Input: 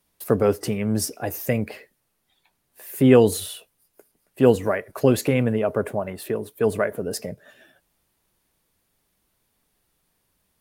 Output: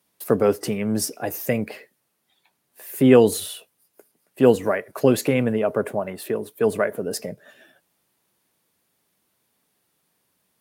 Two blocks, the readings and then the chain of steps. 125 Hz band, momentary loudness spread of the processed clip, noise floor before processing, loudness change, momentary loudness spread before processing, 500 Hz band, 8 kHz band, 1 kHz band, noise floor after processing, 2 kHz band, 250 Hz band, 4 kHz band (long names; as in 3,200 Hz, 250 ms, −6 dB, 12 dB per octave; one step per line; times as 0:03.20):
−3.0 dB, 14 LU, −73 dBFS, +0.5 dB, 14 LU, +1.0 dB, +1.0 dB, +1.0 dB, −73 dBFS, +1.0 dB, +0.5 dB, +1.0 dB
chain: high-pass filter 140 Hz 12 dB per octave
level +1 dB